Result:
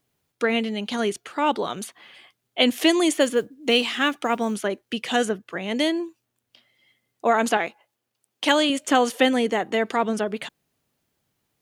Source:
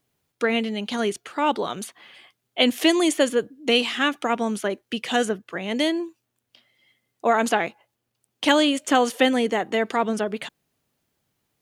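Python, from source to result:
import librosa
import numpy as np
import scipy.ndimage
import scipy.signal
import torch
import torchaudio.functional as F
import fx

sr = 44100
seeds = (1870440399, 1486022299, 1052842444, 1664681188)

y = fx.mod_noise(x, sr, seeds[0], snr_db=35, at=(3.09, 4.54))
y = fx.low_shelf(y, sr, hz=180.0, db=-11.5, at=(7.57, 8.7))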